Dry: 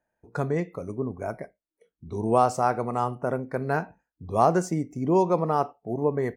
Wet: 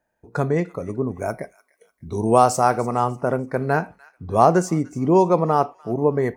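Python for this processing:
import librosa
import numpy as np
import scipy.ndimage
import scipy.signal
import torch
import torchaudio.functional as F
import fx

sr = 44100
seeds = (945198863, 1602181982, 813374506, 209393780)

y = fx.high_shelf(x, sr, hz=fx.line((1.07, 3800.0), (2.8, 5800.0)), db=9.0, at=(1.07, 2.8), fade=0.02)
y = fx.echo_wet_highpass(y, sr, ms=297, feedback_pct=35, hz=1700.0, wet_db=-18.5)
y = F.gain(torch.from_numpy(y), 5.5).numpy()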